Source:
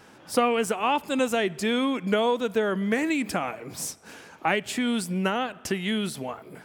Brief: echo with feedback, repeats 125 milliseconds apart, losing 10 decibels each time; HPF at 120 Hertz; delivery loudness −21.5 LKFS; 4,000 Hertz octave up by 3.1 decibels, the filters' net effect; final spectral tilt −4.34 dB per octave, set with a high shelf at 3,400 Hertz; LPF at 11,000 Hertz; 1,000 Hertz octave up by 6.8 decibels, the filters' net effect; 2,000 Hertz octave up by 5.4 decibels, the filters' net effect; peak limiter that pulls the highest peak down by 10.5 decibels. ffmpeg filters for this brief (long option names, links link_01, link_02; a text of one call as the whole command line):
ffmpeg -i in.wav -af "highpass=120,lowpass=11000,equalizer=frequency=1000:width_type=o:gain=8,equalizer=frequency=2000:width_type=o:gain=5,highshelf=frequency=3400:gain=-7,equalizer=frequency=4000:width_type=o:gain=6,alimiter=limit=-15dB:level=0:latency=1,aecho=1:1:125|250|375|500:0.316|0.101|0.0324|0.0104,volume=4.5dB" out.wav